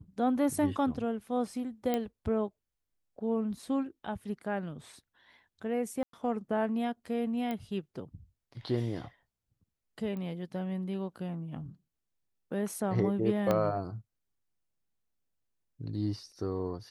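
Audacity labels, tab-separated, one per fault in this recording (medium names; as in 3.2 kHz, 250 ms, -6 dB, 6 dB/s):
1.940000	1.940000	pop -17 dBFS
6.030000	6.130000	dropout 103 ms
7.510000	7.510000	pop -23 dBFS
10.170000	10.170000	pop -29 dBFS
13.510000	13.510000	pop -15 dBFS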